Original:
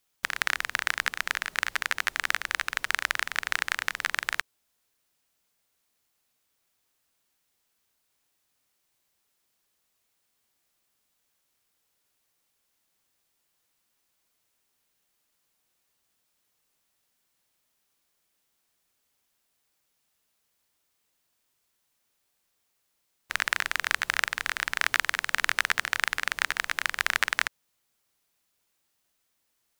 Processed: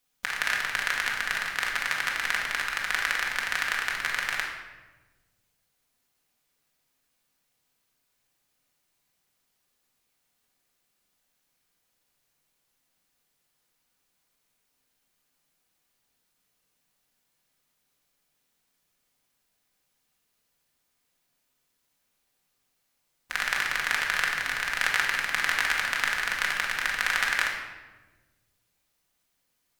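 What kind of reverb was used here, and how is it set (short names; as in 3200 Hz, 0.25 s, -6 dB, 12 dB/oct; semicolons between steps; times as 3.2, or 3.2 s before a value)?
shoebox room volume 820 m³, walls mixed, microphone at 1.9 m; gain -3 dB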